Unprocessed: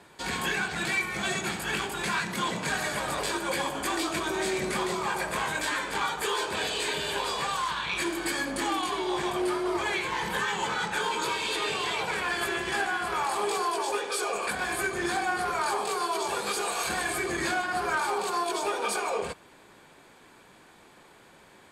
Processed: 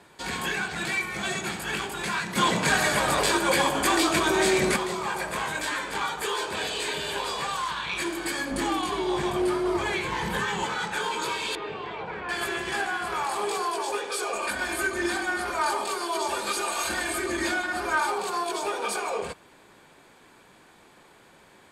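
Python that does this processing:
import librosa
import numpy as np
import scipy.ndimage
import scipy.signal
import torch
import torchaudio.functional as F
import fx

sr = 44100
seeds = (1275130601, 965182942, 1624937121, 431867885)

y = fx.low_shelf(x, sr, hz=270.0, db=9.5, at=(8.51, 10.66))
y = fx.spacing_loss(y, sr, db_at_10k=39, at=(11.55, 12.29))
y = fx.comb(y, sr, ms=3.3, depth=0.65, at=(14.33, 18.12))
y = fx.edit(y, sr, fx.clip_gain(start_s=2.36, length_s=2.4, db=7.0), tone=tone)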